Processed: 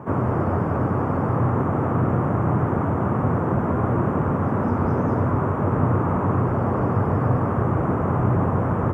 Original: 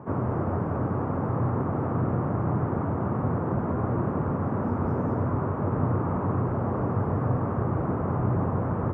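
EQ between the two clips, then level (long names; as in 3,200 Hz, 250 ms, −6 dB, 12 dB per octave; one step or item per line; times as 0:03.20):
high-shelf EQ 2,200 Hz +9 dB
+5.0 dB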